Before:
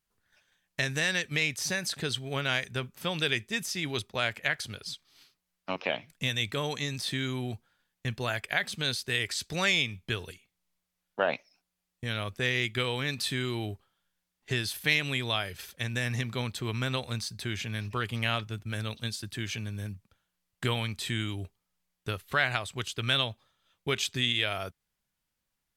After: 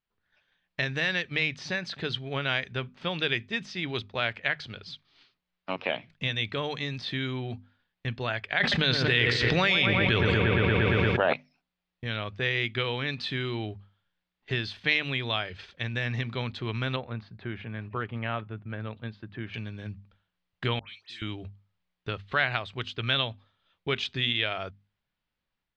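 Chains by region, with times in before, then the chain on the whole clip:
0:08.60–0:11.33: delay with a low-pass on its return 116 ms, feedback 67%, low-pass 1,800 Hz, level −7.5 dB + envelope flattener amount 100%
0:16.96–0:19.54: low-pass filter 1,600 Hz + low-shelf EQ 63 Hz −10 dB
0:20.79–0:21.22: first difference + all-pass dispersion highs, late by 110 ms, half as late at 1,900 Hz
whole clip: low-pass filter 4,100 Hz 24 dB per octave; mains-hum notches 50/100/150/200/250 Hz; automatic gain control gain up to 4 dB; level −3 dB

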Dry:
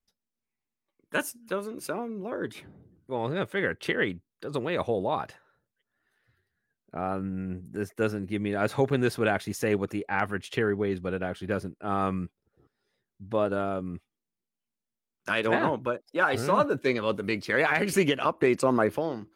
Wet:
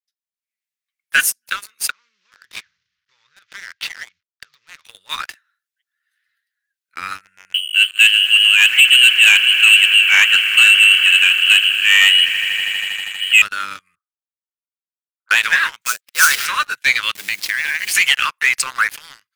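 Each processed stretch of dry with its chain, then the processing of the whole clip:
0:01.90–0:04.85: variable-slope delta modulation 32 kbit/s + spectral tilt −2 dB per octave + downward compressor 10 to 1, threshold −37 dBFS
0:07.54–0:13.42: echo that builds up and dies away 80 ms, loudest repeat 5, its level −18 dB + voice inversion scrambler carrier 3,100 Hz
0:13.95–0:15.31: Butterworth low-pass 1,400 Hz 72 dB per octave + low-shelf EQ 430 Hz −9.5 dB + downward compressor 3 to 1, threshold −46 dBFS
0:15.81–0:16.46: linear-phase brick-wall high-pass 350 Hz + sample-rate reduction 7,700 Hz, jitter 20%
0:17.15–0:17.95: hold until the input has moved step −39.5 dBFS + linear-phase brick-wall high-pass 1,500 Hz + downward compressor 4 to 1, threshold −37 dBFS
whole clip: inverse Chebyshev high-pass filter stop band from 780 Hz, stop band 40 dB; leveller curve on the samples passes 3; automatic gain control gain up to 10 dB

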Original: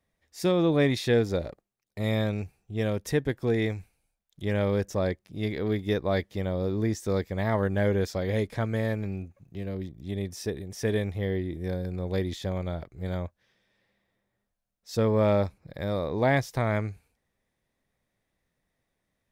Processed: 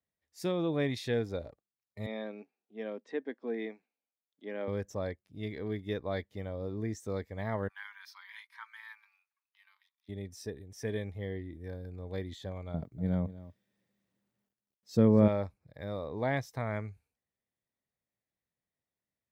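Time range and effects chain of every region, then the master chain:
0:02.06–0:04.68: Chebyshev band-pass filter 230–8,600 Hz, order 4 + high-frequency loss of the air 180 metres
0:07.68–0:10.09: Chebyshev high-pass filter 920 Hz, order 6 + parametric band 7,300 Hz −14 dB 0.29 octaves
0:12.74–0:15.28: parametric band 200 Hz +13.5 dB 2.2 octaves + bit-depth reduction 12 bits, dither none + single-tap delay 240 ms −13.5 dB
whole clip: high-pass filter 65 Hz; noise reduction from a noise print of the clip's start 7 dB; level −8 dB

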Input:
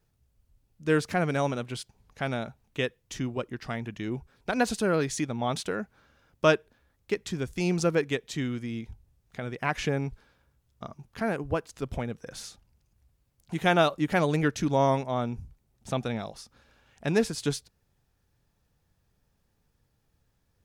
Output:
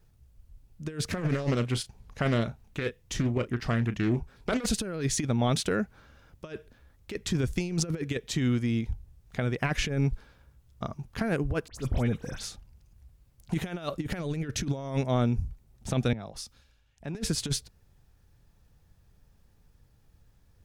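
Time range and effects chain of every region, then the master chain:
0:01.08–0:04.66: double-tracking delay 34 ms −13 dB + highs frequency-modulated by the lows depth 0.36 ms
0:11.68–0:12.43: transient designer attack −10 dB, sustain +6 dB + all-pass dispersion highs, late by 72 ms, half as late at 3,000 Hz
0:16.13–0:17.15: downward compressor 3 to 1, threshold −45 dBFS + multiband upward and downward expander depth 100%
whole clip: dynamic equaliser 890 Hz, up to −7 dB, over −42 dBFS, Q 1.6; compressor whose output falls as the input rises −30 dBFS, ratio −0.5; low-shelf EQ 100 Hz +10 dB; level +1.5 dB

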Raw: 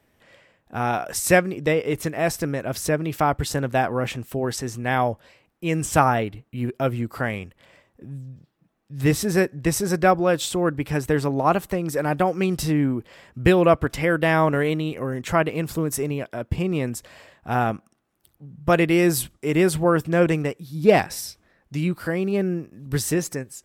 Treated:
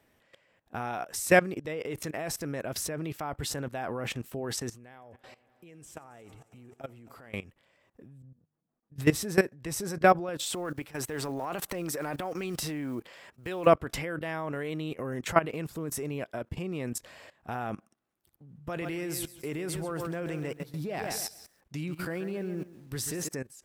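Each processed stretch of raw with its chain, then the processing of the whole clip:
0:04.75–0:07.34: parametric band 460 Hz +3 dB 0.58 octaves + downward compressor 8 to 1, threshold −32 dBFS + echo machine with several playback heads 90 ms, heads first and third, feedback 70%, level −21 dB
0:08.22–0:08.96: low-pass filter 1,200 Hz + mains-hum notches 50/100/150 Hz + tuned comb filter 240 Hz, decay 0.21 s, mix 70%
0:10.44–0:13.67: one scale factor per block 7 bits + low-shelf EQ 280 Hz −9.5 dB + transient designer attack −12 dB, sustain +6 dB
0:18.57–0:23.29: downward compressor 3 to 1, threshold −20 dBFS + feedback echo at a low word length 135 ms, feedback 35%, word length 8 bits, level −10 dB
whole clip: low-shelf EQ 170 Hz −4.5 dB; output level in coarse steps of 17 dB

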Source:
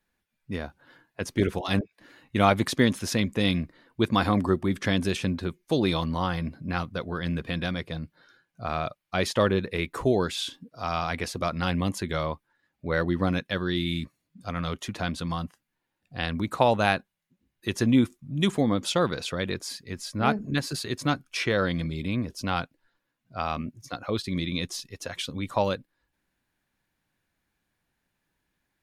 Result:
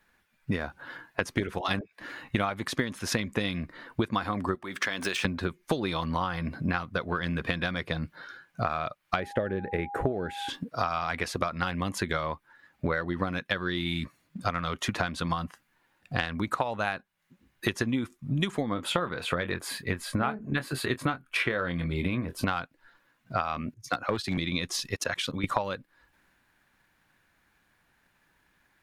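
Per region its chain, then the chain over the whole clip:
0:04.55–0:05.25: running median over 3 samples + high-pass filter 740 Hz 6 dB per octave + downward compressor 2.5 to 1, threshold −33 dBFS
0:09.19–0:10.48: downward expander −39 dBFS + drawn EQ curve 710 Hz 0 dB, 1,100 Hz −18 dB, 1,600 Hz −3 dB, 5,100 Hz −21 dB, 11,000 Hz −11 dB + steady tone 810 Hz −43 dBFS
0:18.74–0:22.48: parametric band 5,700 Hz −14.5 dB 0.8 octaves + double-tracking delay 23 ms −10 dB
0:23.74–0:24.38: hard clipping −22 dBFS + multiband upward and downward expander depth 70%
0:24.96–0:25.44: high-pass filter 76 Hz + notch filter 760 Hz, Q 18 + output level in coarse steps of 20 dB
whole clip: parametric band 1,400 Hz +7.5 dB 1.9 octaves; transient designer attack +6 dB, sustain +2 dB; downward compressor 12 to 1, threshold −31 dBFS; level +6 dB

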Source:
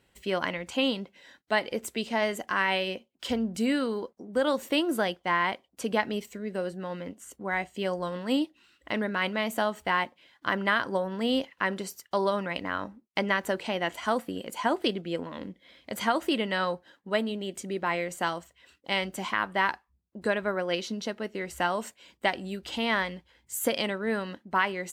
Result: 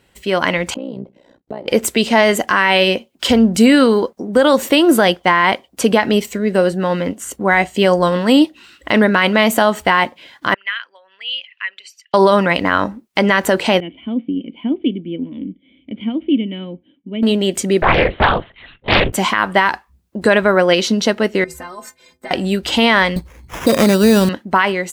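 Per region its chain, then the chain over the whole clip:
0:00.74–0:01.68: drawn EQ curve 510 Hz 0 dB, 910 Hz −9 dB, 1,700 Hz −21 dB + downward compressor 8 to 1, threshold −38 dBFS + amplitude modulation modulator 61 Hz, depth 80%
0:10.54–0:12.14: spectral envelope exaggerated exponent 1.5 + four-pole ladder band-pass 2,800 Hz, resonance 65%
0:13.80–0:17.23: formant resonators in series i + parametric band 2,300 Hz −3.5 dB 2.8 octaves
0:17.82–0:19.13: linear-prediction vocoder at 8 kHz whisper + highs frequency-modulated by the lows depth 0.61 ms
0:21.44–0:22.31: parametric band 3,000 Hz −13.5 dB 0.33 octaves + downward compressor 2.5 to 1, threshold −38 dBFS + stiff-string resonator 76 Hz, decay 0.38 s, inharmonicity 0.03
0:23.16–0:24.29: spectral tilt −3.5 dB per octave + sample-rate reduction 4,300 Hz
whole clip: automatic gain control gain up to 8 dB; boost into a limiter +11 dB; level −1 dB

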